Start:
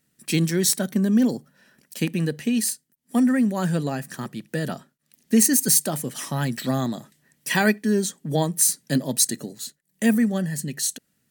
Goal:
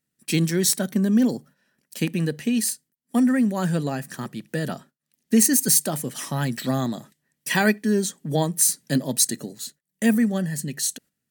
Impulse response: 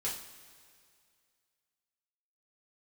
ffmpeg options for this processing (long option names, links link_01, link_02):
-af "agate=range=-11dB:threshold=-47dB:ratio=16:detection=peak"